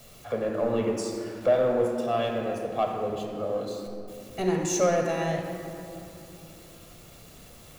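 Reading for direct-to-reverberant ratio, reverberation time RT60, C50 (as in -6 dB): 1.5 dB, 2.9 s, 3.0 dB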